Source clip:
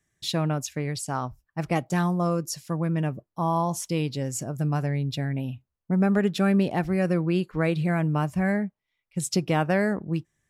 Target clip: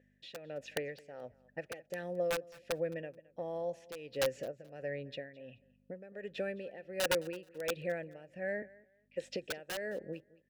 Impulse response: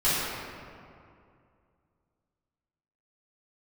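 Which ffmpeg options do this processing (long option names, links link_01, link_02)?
-filter_complex "[0:a]asettb=1/sr,asplit=3[link_01][link_02][link_03];[link_01]atrim=end=8.624[link_04];[link_02]atrim=start=8.62:end=9.3,asetpts=PTS-STARTPTS,afade=type=in:duration=0.004:curve=qsin,afade=type=out:start_time=0.676:duration=0.004:curve=qsin,highpass=340[link_05];[link_03]atrim=start=9.296[link_06];[link_04][link_05]acrossfade=duration=0.004:curve1=hsin:curve2=qsin[link_07];[link_07][link_06]acrossfade=duration=0.004:curve1=qsin:curve2=hsin,acrossover=split=5100[link_08][link_09];[link_08]acompressor=threshold=-30dB:ratio=16[link_10];[link_09]aeval=exprs='(tanh(224*val(0)+0.7)-tanh(0.7))/224':channel_layout=same[link_11];[link_10][link_11]amix=inputs=2:normalize=0,aeval=exprs='val(0)+0.00316*(sin(2*PI*50*n/s)+sin(2*PI*2*50*n/s)/2+sin(2*PI*3*50*n/s)/3+sin(2*PI*4*50*n/s)/4+sin(2*PI*5*50*n/s)/5)':channel_layout=same,asplit=3[link_12][link_13][link_14];[link_12]bandpass=frequency=530:width_type=q:width=8,volume=0dB[link_15];[link_13]bandpass=frequency=1840:width_type=q:width=8,volume=-6dB[link_16];[link_14]bandpass=frequency=2480:width_type=q:width=8,volume=-9dB[link_17];[link_15][link_16][link_17]amix=inputs=3:normalize=0,aeval=exprs='(mod(63.1*val(0)+1,2)-1)/63.1':channel_layout=same,tremolo=f=1.4:d=0.8,aecho=1:1:215|430:0.0794|0.0175,volume=12dB"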